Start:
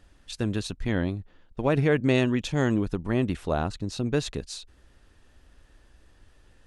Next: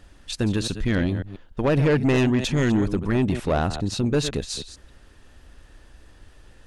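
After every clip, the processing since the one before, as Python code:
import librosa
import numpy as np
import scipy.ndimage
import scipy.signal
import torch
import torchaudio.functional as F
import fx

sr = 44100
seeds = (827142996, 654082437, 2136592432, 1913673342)

y = fx.reverse_delay(x, sr, ms=136, wet_db=-13)
y = 10.0 ** (-21.0 / 20.0) * np.tanh(y / 10.0 ** (-21.0 / 20.0))
y = F.gain(torch.from_numpy(y), 7.0).numpy()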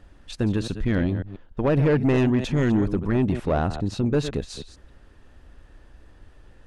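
y = fx.high_shelf(x, sr, hz=2700.0, db=-10.5)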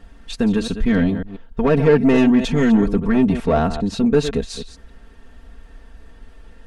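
y = x + 0.88 * np.pad(x, (int(4.4 * sr / 1000.0), 0))[:len(x)]
y = F.gain(torch.from_numpy(y), 3.5).numpy()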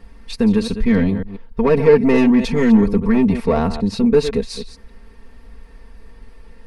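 y = fx.ripple_eq(x, sr, per_octave=0.89, db=7)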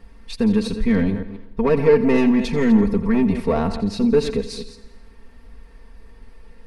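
y = fx.echo_feedback(x, sr, ms=84, feedback_pct=59, wet_db=-15.5)
y = F.gain(torch.from_numpy(y), -3.0).numpy()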